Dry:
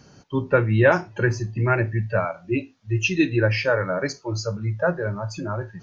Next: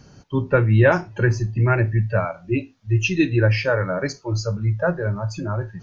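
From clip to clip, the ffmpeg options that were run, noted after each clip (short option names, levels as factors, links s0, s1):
-af "lowshelf=f=110:g=10"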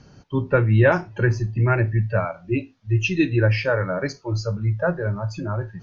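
-af "lowpass=5600,volume=0.891"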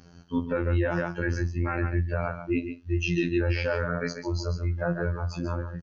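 -af "afftfilt=real='hypot(re,im)*cos(PI*b)':imag='0':win_size=2048:overlap=0.75,aecho=1:1:140:0.316,alimiter=limit=0.188:level=0:latency=1:release=20"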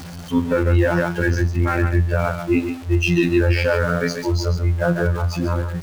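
-af "aeval=exprs='val(0)+0.5*0.0119*sgn(val(0))':c=same,volume=2.51"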